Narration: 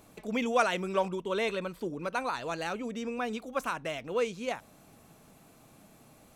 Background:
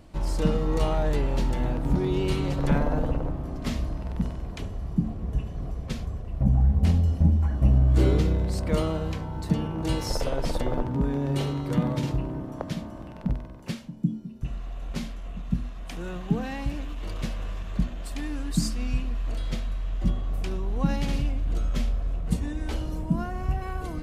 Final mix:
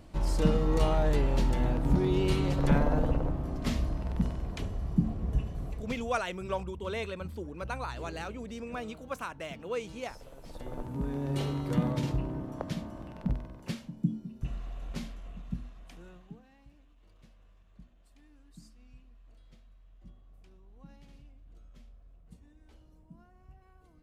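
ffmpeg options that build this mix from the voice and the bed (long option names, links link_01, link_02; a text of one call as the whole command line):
ffmpeg -i stem1.wav -i stem2.wav -filter_complex "[0:a]adelay=5550,volume=-5dB[link_01];[1:a]volume=18dB,afade=type=out:start_time=5.35:duration=0.95:silence=0.0841395,afade=type=in:start_time=10.42:duration=1.14:silence=0.105925,afade=type=out:start_time=14.5:duration=1.92:silence=0.0595662[link_02];[link_01][link_02]amix=inputs=2:normalize=0" out.wav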